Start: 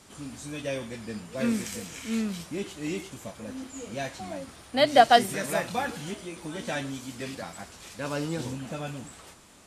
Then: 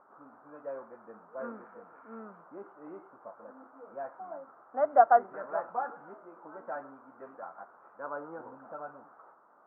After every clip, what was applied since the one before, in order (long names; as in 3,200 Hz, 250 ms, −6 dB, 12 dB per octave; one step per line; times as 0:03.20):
high-pass filter 680 Hz 12 dB per octave
upward compression, threshold −51 dBFS
Chebyshev low-pass filter 1,400 Hz, order 5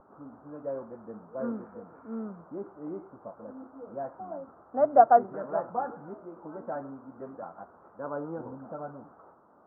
spectral tilt −5.5 dB per octave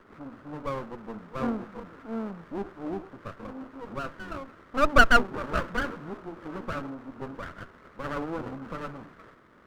lower of the sound and its delayed copy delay 0.63 ms
level +5.5 dB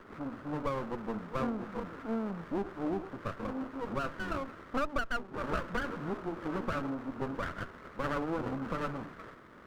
downward compressor 16 to 1, threshold −32 dBFS, peak gain reduction 22.5 dB
level +3 dB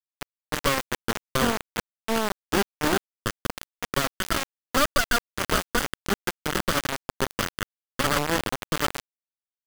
bit reduction 5 bits
level +8.5 dB